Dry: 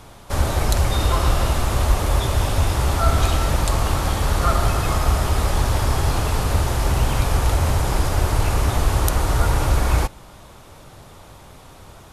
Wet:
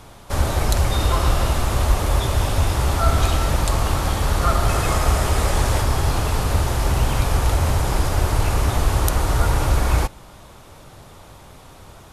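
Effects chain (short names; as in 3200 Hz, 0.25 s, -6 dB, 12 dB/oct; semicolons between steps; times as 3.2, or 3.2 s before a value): 4.69–5.82 graphic EQ 500/2000/8000 Hz +3/+3/+4 dB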